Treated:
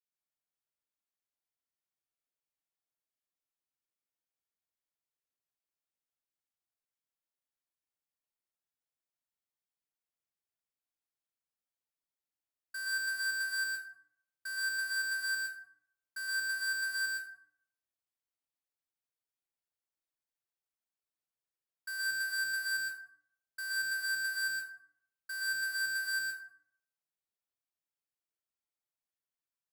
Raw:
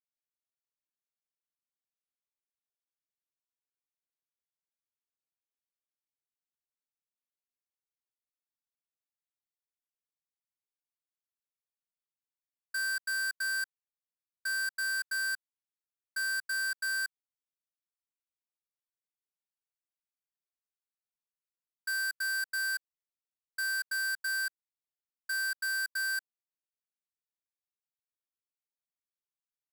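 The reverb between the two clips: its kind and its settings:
dense smooth reverb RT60 0.61 s, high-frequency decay 0.55×, pre-delay 105 ms, DRR −4.5 dB
level −7 dB

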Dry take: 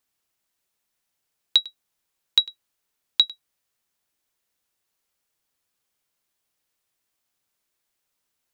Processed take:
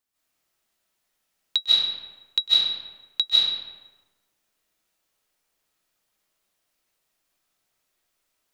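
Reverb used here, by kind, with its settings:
comb and all-pass reverb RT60 1.2 s, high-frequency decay 0.65×, pre-delay 115 ms, DRR −10 dB
level −5.5 dB

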